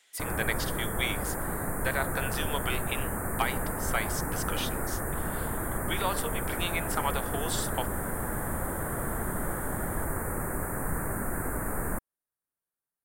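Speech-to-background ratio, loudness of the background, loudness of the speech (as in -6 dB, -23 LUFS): -2.0 dB, -32.5 LUFS, -34.5 LUFS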